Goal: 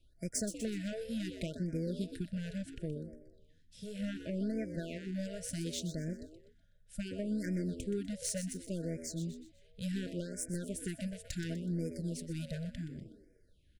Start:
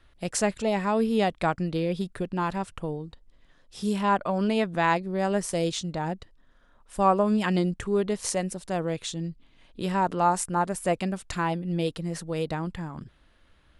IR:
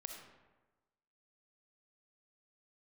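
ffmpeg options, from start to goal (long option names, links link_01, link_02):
-filter_complex "[0:a]acompressor=threshold=-25dB:ratio=8,aeval=exprs='0.224*(cos(1*acos(clip(val(0)/0.224,-1,1)))-cos(1*PI/2))+0.02*(cos(7*acos(clip(val(0)/0.224,-1,1)))-cos(7*PI/2))':channel_layout=same,equalizer=frequency=1100:width_type=o:width=2.5:gain=-11,asplit=5[link_01][link_02][link_03][link_04][link_05];[link_02]adelay=124,afreqshift=77,volume=-12.5dB[link_06];[link_03]adelay=248,afreqshift=154,volume=-20dB[link_07];[link_04]adelay=372,afreqshift=231,volume=-27.6dB[link_08];[link_05]adelay=496,afreqshift=308,volume=-35.1dB[link_09];[link_01][link_06][link_07][link_08][link_09]amix=inputs=5:normalize=0,asoftclip=type=tanh:threshold=-29dB,asettb=1/sr,asplit=3[link_10][link_11][link_12];[link_10]atrim=end=2.744[link_13];[link_11]atrim=start=2.74:end=5.12,asetpts=PTS-STARTPTS,afade=type=in:duration=0.004:curve=qsin,afade=type=out:start_time=2.376:duration=0.004:curve=qsin,acrossover=split=3100[link_14][link_15];[link_15]acompressor=threshold=-58dB:ratio=4:attack=1:release=60[link_16];[link_14][link_16]amix=inputs=2:normalize=0[link_17];[link_12]atrim=start=5.116[link_18];[link_13][link_17]acrossfade=duration=0.004:curve1=hsin:curve2=qsin[link_19];[link_19][link_18]acrossfade=duration=0.004:curve1=qsin:curve2=hsin,afftfilt=real='re*(1-between(b*sr/4096,670,1400))':imag='im*(1-between(b*sr/4096,670,1400))':win_size=4096:overlap=0.75,afftfilt=real='re*(1-between(b*sr/1024,280*pow(3500/280,0.5+0.5*sin(2*PI*0.69*pts/sr))/1.41,280*pow(3500/280,0.5+0.5*sin(2*PI*0.69*pts/sr))*1.41))':imag='im*(1-between(b*sr/1024,280*pow(3500/280,0.5+0.5*sin(2*PI*0.69*pts/sr))/1.41,280*pow(3500/280,0.5+0.5*sin(2*PI*0.69*pts/sr))*1.41))':win_size=1024:overlap=0.75,volume=2dB"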